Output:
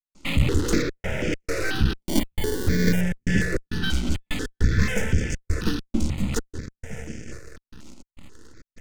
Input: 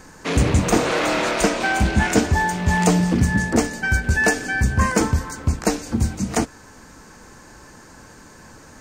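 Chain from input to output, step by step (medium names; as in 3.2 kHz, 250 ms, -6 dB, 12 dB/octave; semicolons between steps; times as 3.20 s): 0.82–1.33 s: one-bit delta coder 32 kbps, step -39 dBFS; half-wave rectifier; distance through air 75 m; on a send: echo that smears into a reverb 609 ms, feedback 52%, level -15 dB; on the sum: trance gate ".xxxxx.xx.xxx.x" 101 bpm -60 dB; band-stop 1.6 kHz, Q 7; in parallel at -7 dB: fuzz box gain 29 dB, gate -36 dBFS; 1.98–3.01 s: on the sum: sample-rate reducer 1.3 kHz, jitter 0%; high-order bell 870 Hz -12.5 dB 1.1 oct; stepped phaser 4.1 Hz 460–4000 Hz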